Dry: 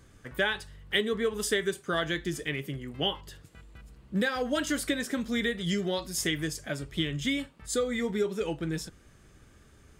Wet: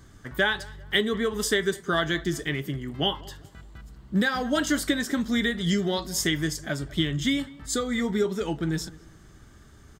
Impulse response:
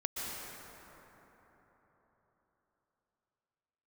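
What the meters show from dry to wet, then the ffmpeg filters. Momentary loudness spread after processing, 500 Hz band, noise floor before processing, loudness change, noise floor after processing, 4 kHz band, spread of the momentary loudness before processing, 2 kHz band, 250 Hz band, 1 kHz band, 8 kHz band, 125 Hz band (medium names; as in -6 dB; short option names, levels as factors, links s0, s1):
7 LU, +2.0 dB, -58 dBFS, +4.0 dB, -52 dBFS, +4.0 dB, 7 LU, +4.0 dB, +5.0 dB, +5.0 dB, +3.5 dB, +5.5 dB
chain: -filter_complex "[0:a]equalizer=f=500:t=o:w=0.33:g=-8,equalizer=f=2500:t=o:w=0.33:g=-9,equalizer=f=10000:t=o:w=0.33:g=-7,asplit=2[s0][s1];[s1]adelay=198,lowpass=f=1800:p=1,volume=0.1,asplit=2[s2][s3];[s3]adelay=198,lowpass=f=1800:p=1,volume=0.38,asplit=2[s4][s5];[s5]adelay=198,lowpass=f=1800:p=1,volume=0.38[s6];[s0][s2][s4][s6]amix=inputs=4:normalize=0,volume=1.88"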